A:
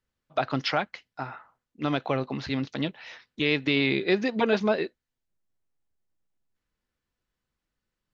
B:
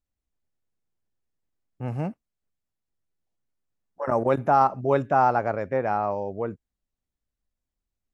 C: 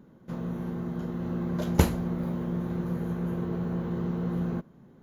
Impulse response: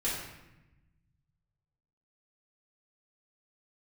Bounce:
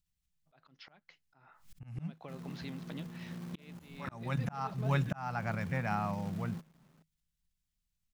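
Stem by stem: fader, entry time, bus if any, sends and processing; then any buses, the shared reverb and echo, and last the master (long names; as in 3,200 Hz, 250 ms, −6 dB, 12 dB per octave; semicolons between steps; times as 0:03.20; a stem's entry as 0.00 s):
−9.5 dB, 0.15 s, no send, downward expander −46 dBFS; downward compressor 6 to 1, threshold −32 dBFS, peak gain reduction 13.5 dB
0.0 dB, 0.00 s, no send, drawn EQ curve 200 Hz 0 dB, 380 Hz −24 dB, 710 Hz −12 dB, 2,900 Hz +3 dB; background raised ahead of every attack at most 140 dB per second
−14.5 dB, 2.00 s, no send, high-pass filter 95 Hz 24 dB per octave; parametric band 380 Hz −5 dB 1.4 octaves; log-companded quantiser 4 bits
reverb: not used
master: parametric band 160 Hz +10.5 dB 0.2 octaves; volume swells 400 ms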